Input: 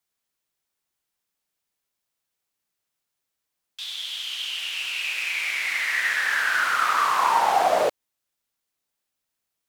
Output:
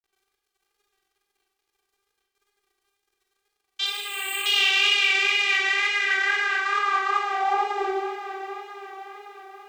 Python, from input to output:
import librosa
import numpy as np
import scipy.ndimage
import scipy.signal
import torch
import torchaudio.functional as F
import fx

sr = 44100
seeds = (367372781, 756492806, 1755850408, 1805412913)

p1 = fx.low_shelf(x, sr, hz=310.0, db=6.0)
p2 = fx.over_compress(p1, sr, threshold_db=-31.0, ratio=-1.0)
p3 = p2 + fx.echo_diffused(p2, sr, ms=558, feedback_pct=58, wet_db=-10.5, dry=0)
p4 = fx.vocoder(p3, sr, bands=32, carrier='saw', carrier_hz=398.0)
p5 = fx.quant_dither(p4, sr, seeds[0], bits=12, dither='none')
p6 = fx.wow_flutter(p5, sr, seeds[1], rate_hz=2.1, depth_cents=55.0)
p7 = fx.resample_bad(p6, sr, factor=8, down='filtered', up='hold', at=(3.86, 4.46))
p8 = fx.rev_schroeder(p7, sr, rt60_s=0.92, comb_ms=32, drr_db=-0.5)
p9 = fx.cheby_harmonics(p8, sr, harmonics=(5, 7), levels_db=(-36, -32), full_scale_db=-13.5)
y = p9 * librosa.db_to_amplitude(4.5)